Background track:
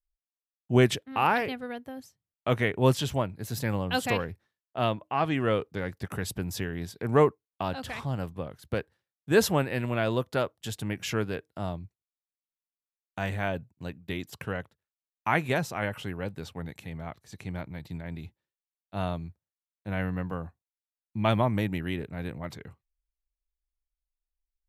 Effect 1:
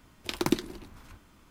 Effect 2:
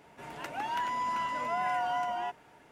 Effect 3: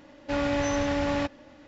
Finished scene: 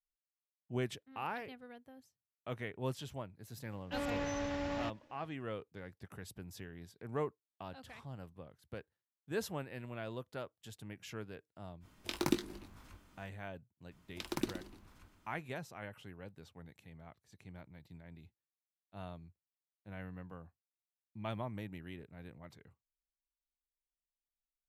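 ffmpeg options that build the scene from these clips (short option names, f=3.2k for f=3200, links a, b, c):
-filter_complex "[1:a]asplit=2[a][b];[0:a]volume=-16dB[c];[3:a]aeval=exprs='sgn(val(0))*max(abs(val(0))-0.00141,0)':c=same[d];[a]asplit=2[e][f];[f]adelay=20,volume=-8dB[g];[e][g]amix=inputs=2:normalize=0[h];[b]aecho=1:1:120:0.299[i];[d]atrim=end=1.67,asetpts=PTS-STARTPTS,volume=-11dB,afade=t=in:d=0.004:c=hsin,afade=t=out:st=1.666:d=0.004:c=hsin,adelay=3630[j];[h]atrim=end=1.5,asetpts=PTS-STARTPTS,volume=-6.5dB,afade=t=in:d=0.05,afade=t=out:st=1.45:d=0.05,adelay=11800[k];[i]atrim=end=1.5,asetpts=PTS-STARTPTS,volume=-10.5dB,afade=t=in:d=0.004:c=hsin,afade=t=out:st=1.496:d=0.004:c=hsin,adelay=13910[l];[c][j][k][l]amix=inputs=4:normalize=0"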